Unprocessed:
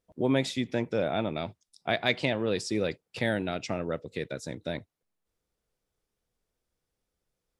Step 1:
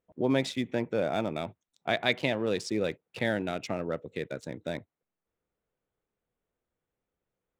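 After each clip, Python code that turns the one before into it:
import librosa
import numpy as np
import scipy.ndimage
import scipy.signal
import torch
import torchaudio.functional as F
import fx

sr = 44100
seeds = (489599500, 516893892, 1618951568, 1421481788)

y = fx.wiener(x, sr, points=9)
y = fx.low_shelf(y, sr, hz=73.0, db=-10.0)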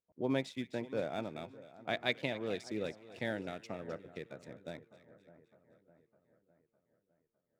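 y = fx.echo_split(x, sr, split_hz=1600.0, low_ms=607, high_ms=259, feedback_pct=52, wet_db=-13.0)
y = fx.upward_expand(y, sr, threshold_db=-37.0, expansion=1.5)
y = F.gain(torch.from_numpy(y), -6.0).numpy()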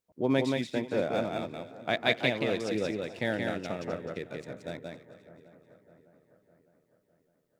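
y = x + 10.0 ** (-3.5 / 20.0) * np.pad(x, (int(176 * sr / 1000.0), 0))[:len(x)]
y = F.gain(torch.from_numpy(y), 6.5).numpy()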